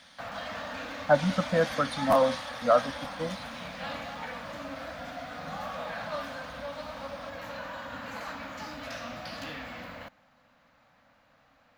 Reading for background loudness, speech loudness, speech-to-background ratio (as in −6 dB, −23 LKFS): −38.5 LKFS, −27.0 LKFS, 11.5 dB